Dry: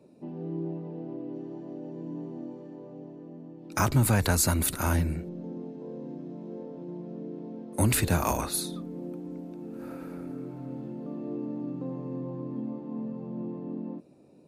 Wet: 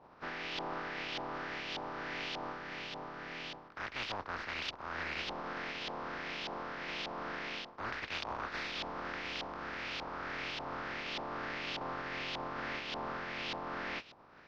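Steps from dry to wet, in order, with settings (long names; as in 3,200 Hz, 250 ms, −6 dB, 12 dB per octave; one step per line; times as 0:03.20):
compressing power law on the bin magnitudes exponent 0.16
dynamic equaliser 160 Hz, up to −4 dB, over −54 dBFS, Q 1.6
auto-filter low-pass saw up 1.7 Hz 850–3,300 Hz
high shelf with overshoot 6,800 Hz −9.5 dB, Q 3
reversed playback
downward compressor 16 to 1, threshold −37 dBFS, peak gain reduction 20.5 dB
reversed playback
level +1 dB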